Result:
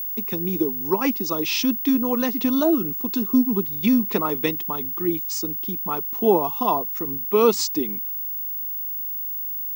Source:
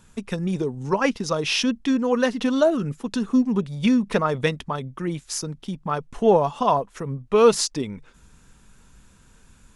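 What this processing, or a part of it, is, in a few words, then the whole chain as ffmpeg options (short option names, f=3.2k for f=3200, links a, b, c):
old television with a line whistle: -af "highpass=f=190:w=0.5412,highpass=f=190:w=1.3066,equalizer=f=330:t=q:w=4:g=8,equalizer=f=560:t=q:w=4:g=-10,equalizer=f=1.6k:t=q:w=4:g=-10,equalizer=f=3k:t=q:w=4:g=-3,lowpass=f=7.9k:w=0.5412,lowpass=f=7.9k:w=1.3066,aeval=exprs='val(0)+0.0501*sin(2*PI*15625*n/s)':c=same"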